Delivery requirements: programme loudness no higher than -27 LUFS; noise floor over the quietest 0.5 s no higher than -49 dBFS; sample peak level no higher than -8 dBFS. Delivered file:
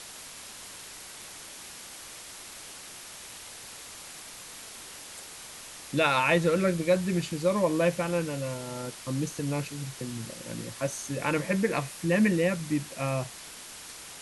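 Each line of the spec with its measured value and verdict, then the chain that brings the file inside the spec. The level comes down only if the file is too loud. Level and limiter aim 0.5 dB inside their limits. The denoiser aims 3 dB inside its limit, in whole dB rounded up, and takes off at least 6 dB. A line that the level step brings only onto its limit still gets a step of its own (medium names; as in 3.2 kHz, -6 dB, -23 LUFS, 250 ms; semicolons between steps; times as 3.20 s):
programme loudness -28.5 LUFS: pass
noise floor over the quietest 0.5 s -45 dBFS: fail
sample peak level -12.0 dBFS: pass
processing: noise reduction 7 dB, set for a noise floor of -45 dBFS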